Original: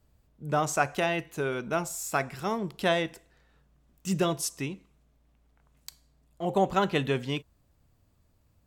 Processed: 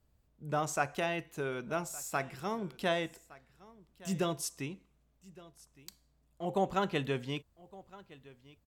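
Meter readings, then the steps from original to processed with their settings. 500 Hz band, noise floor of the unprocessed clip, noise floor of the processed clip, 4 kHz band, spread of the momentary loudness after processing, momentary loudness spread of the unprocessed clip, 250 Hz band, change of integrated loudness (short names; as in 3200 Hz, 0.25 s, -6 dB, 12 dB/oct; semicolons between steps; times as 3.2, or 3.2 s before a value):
-6.0 dB, -67 dBFS, -72 dBFS, -6.0 dB, 22 LU, 15 LU, -6.0 dB, -6.0 dB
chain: echo 1.164 s -21 dB; gain -6 dB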